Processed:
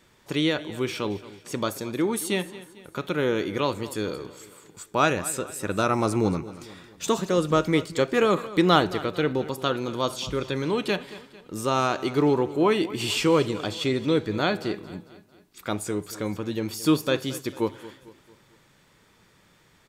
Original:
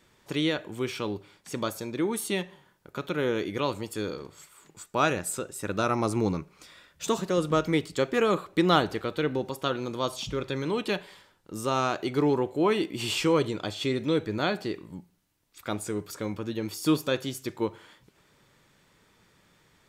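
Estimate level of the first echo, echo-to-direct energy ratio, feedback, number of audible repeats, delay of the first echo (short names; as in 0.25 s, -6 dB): -17.0 dB, -16.0 dB, 47%, 3, 0.224 s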